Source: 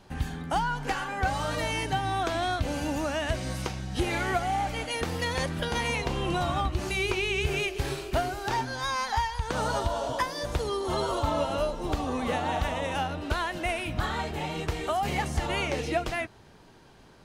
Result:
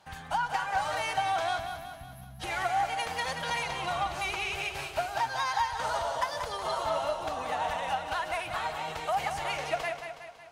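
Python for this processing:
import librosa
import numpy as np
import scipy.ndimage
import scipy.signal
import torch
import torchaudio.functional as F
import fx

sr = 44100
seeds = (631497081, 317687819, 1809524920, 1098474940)

y = fx.cheby_harmonics(x, sr, harmonics=(2,), levels_db=(-13,), full_scale_db=-14.0)
y = scipy.signal.sosfilt(scipy.signal.butter(2, 46.0, 'highpass', fs=sr, output='sos'), y)
y = fx.low_shelf_res(y, sr, hz=500.0, db=-11.0, q=1.5)
y = fx.spec_box(y, sr, start_s=2.61, length_s=1.32, low_hz=260.0, high_hz=10000.0, gain_db=-26)
y = fx.stretch_vocoder(y, sr, factor=0.61)
y = fx.echo_feedback(y, sr, ms=184, feedback_pct=52, wet_db=-8)
y = fx.room_shoebox(y, sr, seeds[0], volume_m3=3700.0, walls='furnished', distance_m=0.59)
y = y * 10.0 ** (-2.0 / 20.0)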